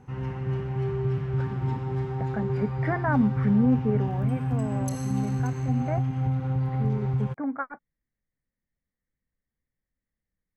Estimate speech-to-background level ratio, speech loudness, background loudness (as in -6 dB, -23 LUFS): -1.0 dB, -29.5 LUFS, -28.5 LUFS